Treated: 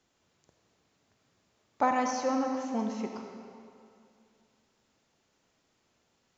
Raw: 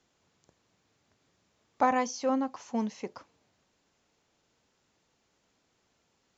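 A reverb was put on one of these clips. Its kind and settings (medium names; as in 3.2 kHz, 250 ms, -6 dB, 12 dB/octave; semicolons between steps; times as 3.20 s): algorithmic reverb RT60 2.4 s, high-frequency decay 0.85×, pre-delay 15 ms, DRR 3 dB; trim -1.5 dB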